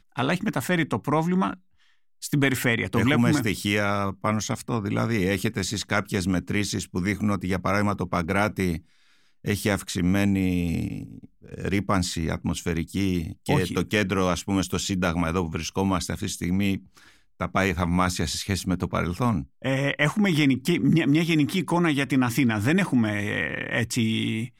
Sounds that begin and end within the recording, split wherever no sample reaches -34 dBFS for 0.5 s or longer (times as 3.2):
2.23–8.78
9.45–16.77